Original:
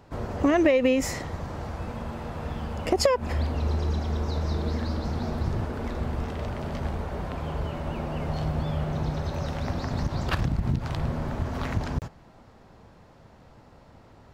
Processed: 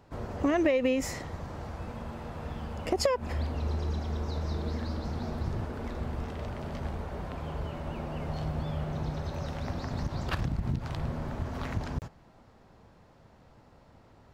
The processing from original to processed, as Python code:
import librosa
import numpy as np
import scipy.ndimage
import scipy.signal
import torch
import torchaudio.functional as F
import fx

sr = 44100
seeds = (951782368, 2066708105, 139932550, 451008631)

y = x * 10.0 ** (-5.0 / 20.0)